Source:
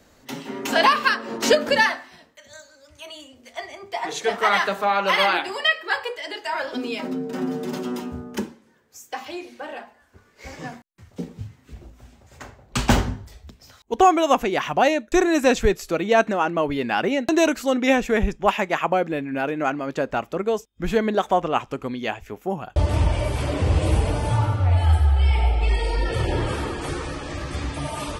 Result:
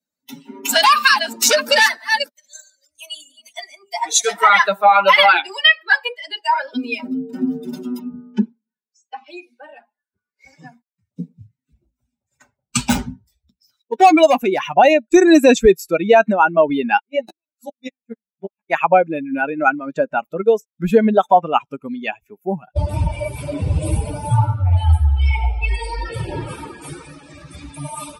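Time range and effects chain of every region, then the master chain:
0.69–4.43 s: chunks repeated in reverse 321 ms, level -8.5 dB + treble shelf 4.5 kHz +10 dB + transformer saturation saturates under 2.7 kHz
7.99–9.28 s: distance through air 120 m + comb 4.7 ms, depth 33%
12.84–14.74 s: hard clipper -16.5 dBFS + doubling 16 ms -13.5 dB
16.97–18.70 s: inverted gate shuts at -12 dBFS, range -41 dB + three-phase chorus
20.36–21.28 s: band-stop 2.3 kHz, Q 23 + tape noise reduction on one side only encoder only
whole clip: expander on every frequency bin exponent 2; high-pass 270 Hz 6 dB/octave; loudness maximiser +17.5 dB; trim -1 dB

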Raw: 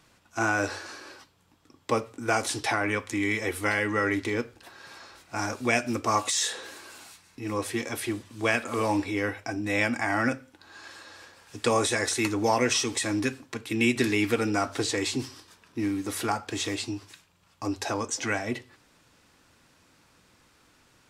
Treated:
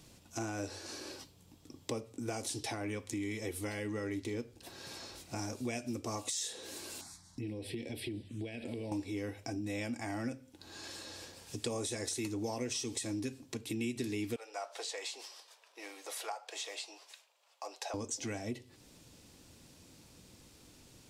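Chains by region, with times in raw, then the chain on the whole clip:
7.01–8.92 s: low-pass 7.2 kHz + compression, threshold -30 dBFS + touch-sensitive phaser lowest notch 370 Hz, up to 1.2 kHz, full sweep at -35.5 dBFS
14.36–17.94 s: steep high-pass 560 Hz + treble shelf 4 kHz -12 dB
whole clip: peaking EQ 1.4 kHz -14.5 dB 1.8 oct; compression 3:1, threshold -46 dBFS; trim +6 dB

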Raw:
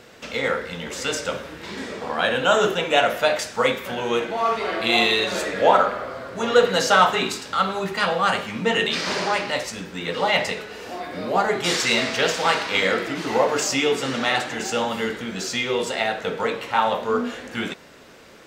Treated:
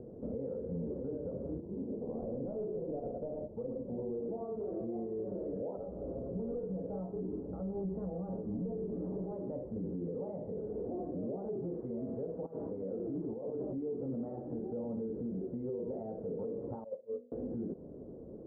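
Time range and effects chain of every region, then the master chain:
1.60–4.29 s: median filter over 25 samples + delay 109 ms -5.5 dB + upward expansion, over -33 dBFS
5.77–9.32 s: square wave that keeps the level + feedback comb 62 Hz, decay 0.2 s, harmonics odd, mix 80% + tape noise reduction on one side only decoder only
12.46–13.78 s: low-pass 2.5 kHz + compressor with a negative ratio -29 dBFS
16.84–17.32 s: cascade formant filter e + peaking EQ 1.2 kHz +13 dB 0.4 oct + upward expansion 2.5:1, over -39 dBFS
whole clip: compression 10:1, threshold -30 dBFS; inverse Chebyshev low-pass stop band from 2.8 kHz, stop band 80 dB; peak limiter -35 dBFS; trim +4 dB

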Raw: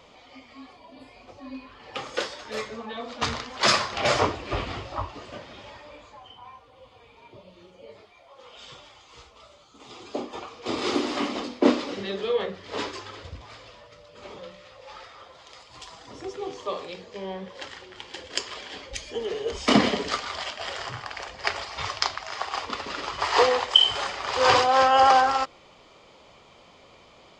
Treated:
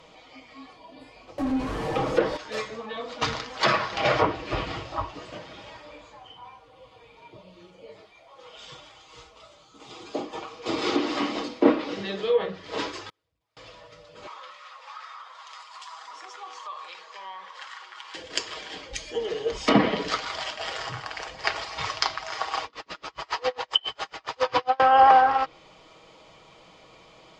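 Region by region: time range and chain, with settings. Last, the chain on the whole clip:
1.38–2.37 s: jump at every zero crossing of -28.5 dBFS + tilt shelf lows +9 dB, about 1.1 kHz
13.09–13.57 s: jump at every zero crossing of -42.5 dBFS + inverted gate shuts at -35 dBFS, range -41 dB
14.27–18.15 s: resonant high-pass 1.1 kHz, resonance Q 3.3 + compression 2.5:1, threshold -39 dBFS
22.65–24.80 s: low-pass 7.2 kHz + logarithmic tremolo 7.3 Hz, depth 36 dB
whole clip: comb 6.3 ms, depth 44%; low-pass that closes with the level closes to 2.3 kHz, closed at -16.5 dBFS

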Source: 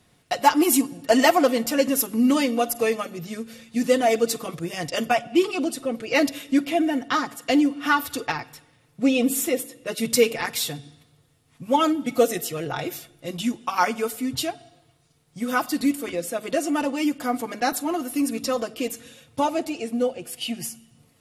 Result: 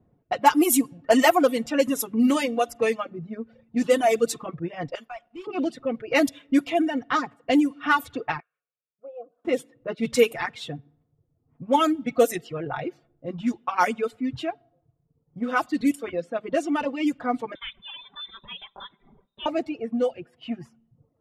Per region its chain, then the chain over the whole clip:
4.95–5.47 s: differentiator + waveshaping leveller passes 3 + compression 2:1, threshold -31 dBFS
8.40–9.45 s: static phaser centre 1.3 kHz, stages 8 + auto-wah 780–2500 Hz, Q 3.9, down, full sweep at -29.5 dBFS
17.55–19.46 s: compression 2.5:1, threshold -26 dBFS + frequency inversion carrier 3.8 kHz
whole clip: level-controlled noise filter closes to 580 Hz, open at -16 dBFS; reverb removal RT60 0.84 s; dynamic bell 4.8 kHz, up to -6 dB, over -47 dBFS, Q 2.3

